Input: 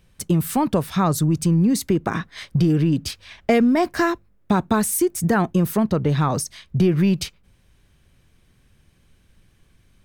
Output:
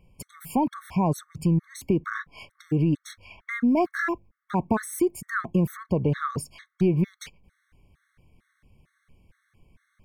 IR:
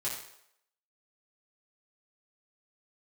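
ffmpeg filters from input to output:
-filter_complex "[0:a]highshelf=f=2.7k:t=q:w=1.5:g=-7,asplit=2[a][b];[b]acompressor=threshold=-25dB:ratio=6,volume=-1dB[c];[a][c]amix=inputs=2:normalize=0,afftfilt=real='re*gt(sin(2*PI*2.2*pts/sr)*(1-2*mod(floor(b*sr/1024/1100),2)),0)':imag='im*gt(sin(2*PI*2.2*pts/sr)*(1-2*mod(floor(b*sr/1024/1100),2)),0)':win_size=1024:overlap=0.75,volume=-5.5dB"

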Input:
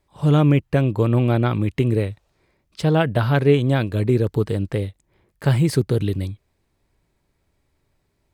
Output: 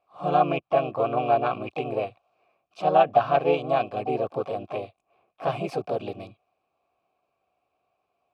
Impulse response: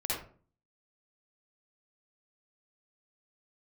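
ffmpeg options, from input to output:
-filter_complex "[0:a]asplit=3[a][b][c];[b]asetrate=52444,aresample=44100,atempo=0.840896,volume=-3dB[d];[c]asetrate=88200,aresample=44100,atempo=0.5,volume=-18dB[e];[a][d][e]amix=inputs=3:normalize=0,asplit=3[f][g][h];[f]bandpass=f=730:t=q:w=8,volume=0dB[i];[g]bandpass=f=1.09k:t=q:w=8,volume=-6dB[j];[h]bandpass=f=2.44k:t=q:w=8,volume=-9dB[k];[i][j][k]amix=inputs=3:normalize=0,volume=8dB"

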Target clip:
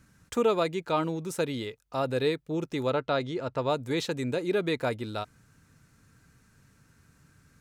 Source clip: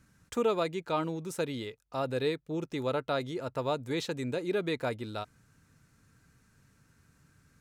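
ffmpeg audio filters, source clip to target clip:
-filter_complex "[0:a]asettb=1/sr,asplit=3[a][b][c];[a]atrim=end=2.904[d];[b]atrim=start=2.9:end=3.7,asetpts=PTS-STARTPTS,afade=t=in:d=0.004:c=qsin,afade=t=out:st=0.796:d=0.004:c=qsin,lowpass=5.8k[e];[c]atrim=start=3.696[f];[d][e]acrossfade=d=0.004:c1=hsin:c2=qsin[g];[g][f]acrossfade=d=0.004:c1=qsin:c2=hsin,volume=3.5dB"

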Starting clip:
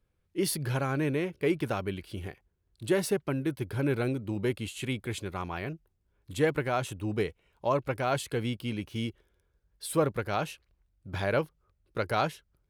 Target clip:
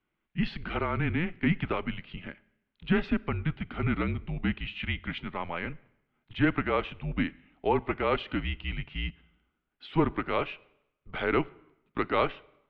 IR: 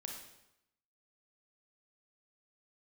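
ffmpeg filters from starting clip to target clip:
-filter_complex "[0:a]highshelf=f=2.4k:g=9,asplit=2[a][b];[1:a]atrim=start_sample=2205[c];[b][c]afir=irnorm=-1:irlink=0,volume=-15dB[d];[a][d]amix=inputs=2:normalize=0,highpass=f=170:t=q:w=0.5412,highpass=f=170:t=q:w=1.307,lowpass=f=3.2k:t=q:w=0.5176,lowpass=f=3.2k:t=q:w=0.7071,lowpass=f=3.2k:t=q:w=1.932,afreqshift=-170"

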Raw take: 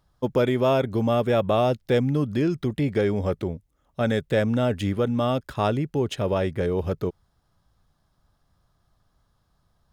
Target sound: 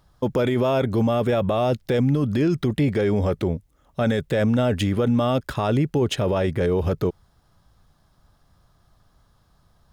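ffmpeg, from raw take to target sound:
-af "alimiter=limit=-21dB:level=0:latency=1:release=19,volume=7.5dB"

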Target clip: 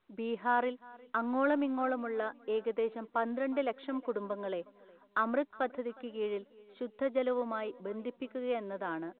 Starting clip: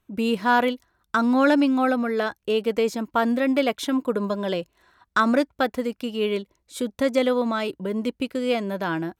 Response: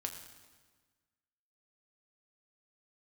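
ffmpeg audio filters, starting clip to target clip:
-filter_complex "[0:a]aeval=exprs='0.422*(cos(1*acos(clip(val(0)/0.422,-1,1)))-cos(1*PI/2))+0.0119*(cos(4*acos(clip(val(0)/0.422,-1,1)))-cos(4*PI/2))':c=same,acrossover=split=260 2000:gain=0.158 1 0.251[a][b][c];[a][b][c]amix=inputs=3:normalize=0,asplit=2[d][e];[e]aecho=0:1:362|724|1086:0.0708|0.0283|0.0113[f];[d][f]amix=inputs=2:normalize=0,volume=-9dB" -ar 8000 -c:a pcm_mulaw

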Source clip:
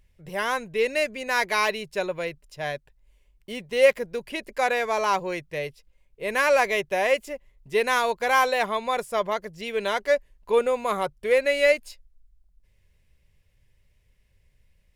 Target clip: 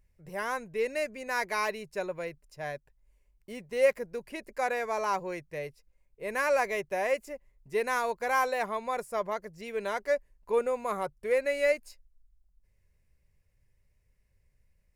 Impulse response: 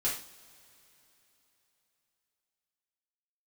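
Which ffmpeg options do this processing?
-af "equalizer=f=3.3k:t=o:w=0.6:g=-11,volume=-6dB"

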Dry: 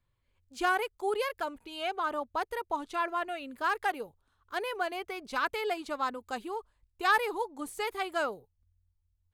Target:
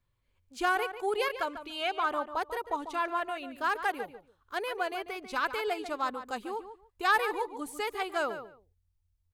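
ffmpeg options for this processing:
-filter_complex "[0:a]asettb=1/sr,asplit=3[a][b][c];[a]atrim=end=1.174[d];[b]atrim=start=1.17:end=2.28,asetpts=PTS-STARTPTS,afade=t=in:d=0.004:c=qsin,afade=t=out:st=1.106:d=0.004:c=qsin,equalizer=f=2.4k:w=0.55:g=4[e];[c]atrim=start=2.276[f];[d][e]acrossfade=d=0.004:c1=hsin:c2=qsin[g];[g][f]acrossfade=d=0.004:c1=qsin:c2=hsin,asplit=2[h][i];[i]adelay=144,lowpass=f=3.4k:p=1,volume=-10.5dB,asplit=2[j][k];[k]adelay=144,lowpass=f=3.4k:p=1,volume=0.18[l];[h][j][l]amix=inputs=3:normalize=0"

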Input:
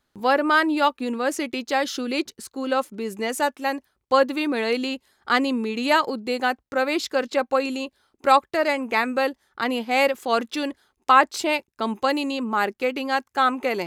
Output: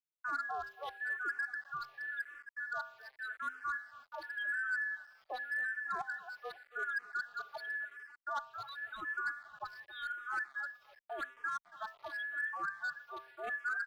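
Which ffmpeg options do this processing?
-filter_complex "[0:a]afftfilt=real='real(if(between(b,1,1012),(2*floor((b-1)/92)+1)*92-b,b),0)':imag='imag(if(between(b,1,1012),(2*floor((b-1)/92)+1)*92-b,b),0)*if(between(b,1,1012),-1,1)':win_size=2048:overlap=0.75,afftfilt=real='re*gte(hypot(re,im),0.282)':imag='im*gte(hypot(re,im),0.282)':win_size=1024:overlap=0.75,areverse,acompressor=threshold=-29dB:ratio=6,areverse,bandreject=f=131.2:t=h:w=4,bandreject=f=262.4:t=h:w=4,bandreject=f=393.6:t=h:w=4,bandreject=f=524.8:t=h:w=4,bandreject=f=656:t=h:w=4,bandreject=f=787.2:t=h:w=4,bandreject=f=918.4:t=h:w=4,bandreject=f=1.0496k:t=h:w=4,bandreject=f=1.1808k:t=h:w=4,bandreject=f=1.312k:t=h:w=4,bandreject=f=1.4432k:t=h:w=4,bandreject=f=1.5744k:t=h:w=4,bandreject=f=1.7056k:t=h:w=4,bandreject=f=1.8368k:t=h:w=4,bandreject=f=1.968k:t=h:w=4,bandreject=f=2.0992k:t=h:w=4,bandreject=f=2.2304k:t=h:w=4,bandreject=f=2.3616k:t=h:w=4,bandreject=f=2.4928k:t=h:w=4,bandreject=f=2.624k:t=h:w=4,bandreject=f=2.7552k:t=h:w=4,bandreject=f=2.8864k:t=h:w=4,bandreject=f=3.0176k:t=h:w=4,bandreject=f=3.1488k:t=h:w=4,asplit=2[a][b];[b]aecho=0:1:275|550|825|1100:0.15|0.0703|0.0331|0.0155[c];[a][c]amix=inputs=2:normalize=0,acrusher=bits=7:mix=0:aa=0.000001,acrossover=split=470 3000:gain=0.2 1 0.0794[d][e][f];[d][e][f]amix=inputs=3:normalize=0,bandreject=f=960:w=8.4,asoftclip=type=hard:threshold=-27.5dB,agate=range=-41dB:threshold=-49dB:ratio=16:detection=peak,equalizer=f=63:t=o:w=0.24:g=-7.5,asplit=2[g][h];[h]afreqshift=-0.89[i];[g][i]amix=inputs=2:normalize=1,volume=-3dB"

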